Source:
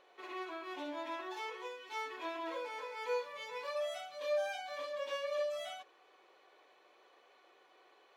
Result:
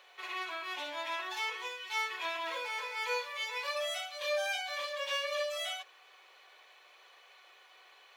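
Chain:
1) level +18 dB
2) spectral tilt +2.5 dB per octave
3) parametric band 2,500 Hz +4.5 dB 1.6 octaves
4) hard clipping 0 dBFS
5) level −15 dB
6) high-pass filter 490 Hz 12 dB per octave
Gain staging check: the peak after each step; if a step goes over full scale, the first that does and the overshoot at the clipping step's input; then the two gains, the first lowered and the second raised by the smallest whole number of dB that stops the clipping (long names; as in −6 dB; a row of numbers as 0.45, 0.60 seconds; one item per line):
−8.0, −7.0, −5.5, −5.5, −20.5, −22.5 dBFS
no step passes full scale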